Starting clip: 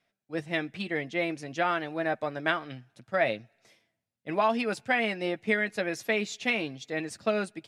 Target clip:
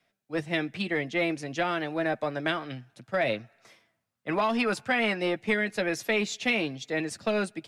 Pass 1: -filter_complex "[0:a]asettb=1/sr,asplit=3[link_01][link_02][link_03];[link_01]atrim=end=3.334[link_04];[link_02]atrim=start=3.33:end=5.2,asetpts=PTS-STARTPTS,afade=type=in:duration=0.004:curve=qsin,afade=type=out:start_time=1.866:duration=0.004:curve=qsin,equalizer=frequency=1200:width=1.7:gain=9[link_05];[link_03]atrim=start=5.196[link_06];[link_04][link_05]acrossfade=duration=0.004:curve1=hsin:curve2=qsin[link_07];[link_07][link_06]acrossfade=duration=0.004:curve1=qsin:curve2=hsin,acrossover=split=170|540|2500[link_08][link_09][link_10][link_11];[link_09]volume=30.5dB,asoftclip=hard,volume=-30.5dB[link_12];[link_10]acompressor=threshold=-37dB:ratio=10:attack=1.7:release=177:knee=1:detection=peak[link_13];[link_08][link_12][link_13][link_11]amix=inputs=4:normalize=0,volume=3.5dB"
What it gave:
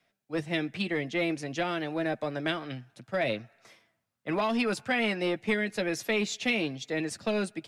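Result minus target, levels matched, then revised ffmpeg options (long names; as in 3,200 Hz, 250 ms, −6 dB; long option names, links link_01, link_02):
downward compressor: peak gain reduction +6.5 dB
-filter_complex "[0:a]asettb=1/sr,asplit=3[link_01][link_02][link_03];[link_01]atrim=end=3.334[link_04];[link_02]atrim=start=3.33:end=5.2,asetpts=PTS-STARTPTS,afade=type=in:duration=0.004:curve=qsin,afade=type=out:start_time=1.866:duration=0.004:curve=qsin,equalizer=frequency=1200:width=1.7:gain=9[link_05];[link_03]atrim=start=5.196[link_06];[link_04][link_05]acrossfade=duration=0.004:curve1=hsin:curve2=qsin[link_07];[link_07][link_06]acrossfade=duration=0.004:curve1=qsin:curve2=hsin,acrossover=split=170|540|2500[link_08][link_09][link_10][link_11];[link_09]volume=30.5dB,asoftclip=hard,volume=-30.5dB[link_12];[link_10]acompressor=threshold=-30dB:ratio=10:attack=1.7:release=177:knee=1:detection=peak[link_13];[link_08][link_12][link_13][link_11]amix=inputs=4:normalize=0,volume=3.5dB"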